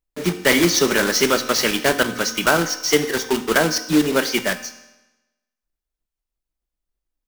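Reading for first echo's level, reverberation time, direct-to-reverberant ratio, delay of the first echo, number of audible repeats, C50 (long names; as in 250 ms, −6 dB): no echo audible, 1.0 s, 10.0 dB, no echo audible, no echo audible, 12.5 dB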